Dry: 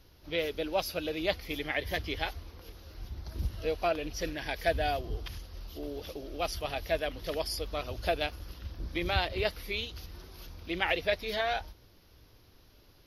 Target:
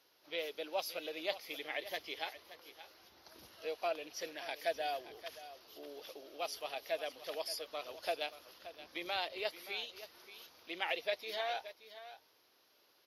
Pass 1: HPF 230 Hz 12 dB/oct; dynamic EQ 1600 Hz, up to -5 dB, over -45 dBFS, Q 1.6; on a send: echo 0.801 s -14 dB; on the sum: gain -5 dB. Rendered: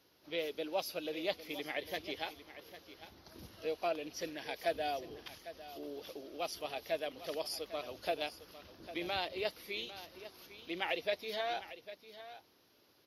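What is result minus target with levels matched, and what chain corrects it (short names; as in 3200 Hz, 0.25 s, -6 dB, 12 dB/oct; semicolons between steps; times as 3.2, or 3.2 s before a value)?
echo 0.226 s late; 250 Hz band +6.5 dB
HPF 510 Hz 12 dB/oct; dynamic EQ 1600 Hz, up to -5 dB, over -45 dBFS, Q 1.6; on a send: echo 0.575 s -14 dB; on the sum: gain -5 dB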